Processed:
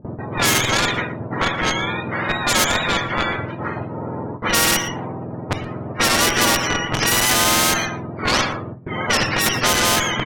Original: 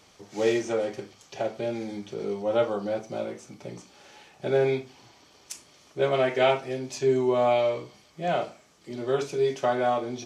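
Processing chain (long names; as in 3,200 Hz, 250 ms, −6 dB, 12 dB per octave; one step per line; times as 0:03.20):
frequency axis turned over on the octave scale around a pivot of 870 Hz
low-pass that shuts in the quiet parts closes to 1,200 Hz, open at −23 dBFS
noise gate with hold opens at −43 dBFS
in parallel at −10.5 dB: comparator with hysteresis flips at −26 dBFS
on the sum: low-pass that shuts in the quiet parts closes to 730 Hz, open at −21 dBFS
on a send: single-tap delay 117 ms −23.5 dB
on the sum: every bin compressed towards the loudest bin 4 to 1
level +8.5 dB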